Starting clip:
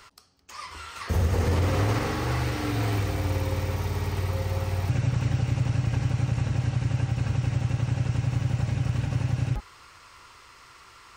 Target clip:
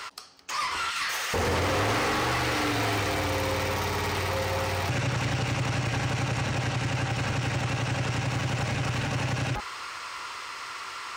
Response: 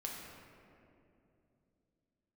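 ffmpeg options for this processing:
-filter_complex "[0:a]asettb=1/sr,asplit=3[s0][s1][s2];[s0]atrim=end=0.904[s3];[s1]atrim=start=0.9:end=1.34,asetpts=PTS-STARTPTS,afade=t=in:d=0.004:c=qsin,afade=t=out:st=0.436:d=0.004:c=qsin,highpass=1500[s4];[s2]atrim=start=1.336[s5];[s3][s4]acrossfade=d=0.004:c1=hsin:c2=qsin[s6];[s6][s5]acrossfade=d=0.004:c1=qsin:c2=hsin,asplit=2[s7][s8];[s8]aeval=exprs='0.0282*(abs(mod(val(0)/0.0282+3,4)-2)-1)':c=same,volume=0.316[s9];[s7][s9]amix=inputs=2:normalize=0,asplit=2[s10][s11];[s11]highpass=f=720:p=1,volume=14.1,asoftclip=type=tanh:threshold=0.2[s12];[s10][s12]amix=inputs=2:normalize=0,lowpass=f=5700:p=1,volume=0.501,volume=0.596"

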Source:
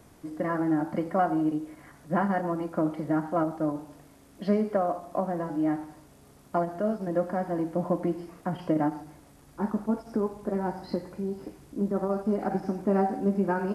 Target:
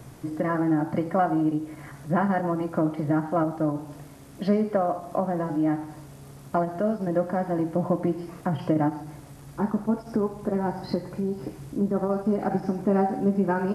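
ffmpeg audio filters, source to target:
-filter_complex "[0:a]equalizer=f=130:w=5.1:g=14,asplit=2[s0][s1];[s1]acompressor=threshold=0.0158:ratio=6,volume=1.19[s2];[s0][s2]amix=inputs=2:normalize=0"

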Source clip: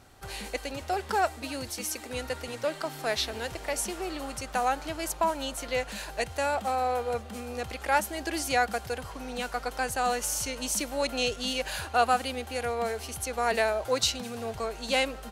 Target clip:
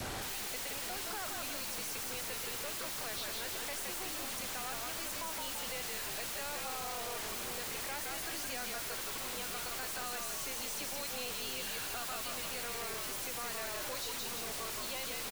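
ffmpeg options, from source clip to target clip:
-filter_complex "[0:a]adynamicequalizer=threshold=0.00447:dfrequency=1100:dqfactor=3.8:tfrequency=1100:tqfactor=3.8:attack=5:release=100:ratio=0.375:range=4:mode=boostabove:tftype=bell,acrossover=split=160|420|1700|3900[s0][s1][s2][s3][s4];[s0]acompressor=threshold=0.00126:ratio=4[s5];[s1]acompressor=threshold=0.00282:ratio=4[s6];[s2]acompressor=threshold=0.00708:ratio=4[s7];[s3]acompressor=threshold=0.0112:ratio=4[s8];[s4]acompressor=threshold=0.01:ratio=4[s9];[s5][s6][s7][s8][s9]amix=inputs=5:normalize=0,asplit=8[s10][s11][s12][s13][s14][s15][s16][s17];[s11]adelay=169,afreqshift=-56,volume=0.668[s18];[s12]adelay=338,afreqshift=-112,volume=0.347[s19];[s13]adelay=507,afreqshift=-168,volume=0.18[s20];[s14]adelay=676,afreqshift=-224,volume=0.0944[s21];[s15]adelay=845,afreqshift=-280,volume=0.049[s22];[s16]adelay=1014,afreqshift=-336,volume=0.0254[s23];[s17]adelay=1183,afreqshift=-392,volume=0.0132[s24];[s10][s18][s19][s20][s21][s22][s23][s24]amix=inputs=8:normalize=0,aeval=exprs='(tanh(141*val(0)+0.45)-tanh(0.45))/141':c=same,aeval=exprs='0.0106*sin(PI/2*7.08*val(0)/0.0106)':c=same,volume=1.33"

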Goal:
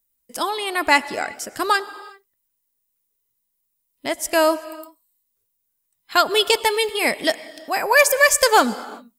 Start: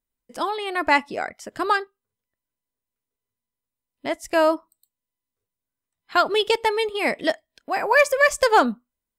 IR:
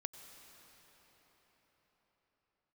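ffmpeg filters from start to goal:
-filter_complex "[0:a]aemphasis=mode=production:type=75kf,asplit=2[s0][s1];[1:a]atrim=start_sample=2205,afade=t=out:st=0.44:d=0.01,atrim=end_sample=19845[s2];[s1][s2]afir=irnorm=-1:irlink=0,volume=1.06[s3];[s0][s3]amix=inputs=2:normalize=0,volume=0.631"

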